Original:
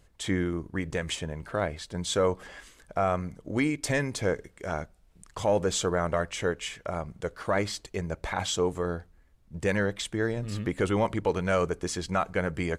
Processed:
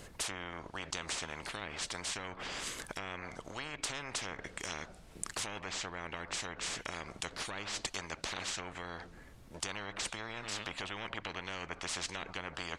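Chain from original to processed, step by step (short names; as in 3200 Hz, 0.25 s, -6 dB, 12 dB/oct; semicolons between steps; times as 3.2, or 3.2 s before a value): treble ducked by the level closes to 1800 Hz, closed at -23.5 dBFS; spectral compressor 10:1; gain +1.5 dB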